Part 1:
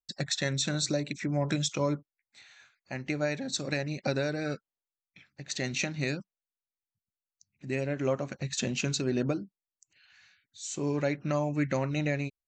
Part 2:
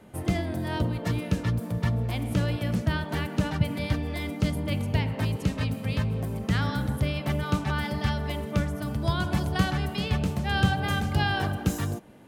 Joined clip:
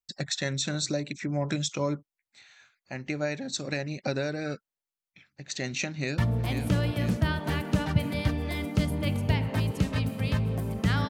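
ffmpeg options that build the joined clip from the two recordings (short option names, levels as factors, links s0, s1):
-filter_complex "[0:a]apad=whole_dur=11.09,atrim=end=11.09,atrim=end=6.182[s0];[1:a]atrim=start=1.828:end=6.74[s1];[s0][s1]acrossfade=d=0.004:c1=hsin:c2=hsin,asplit=2[s2][s3];[s3]afade=t=in:st=5.89:d=0.01,afade=t=out:st=6.18:d=0.01,aecho=0:1:490|980|1470|1960|2450|2940|3430|3920|4410:0.421697|0.274103|0.178167|0.115808|0.0752755|0.048929|0.0318039|0.0206725|0.0134371[s4];[s2][s4]amix=inputs=2:normalize=0"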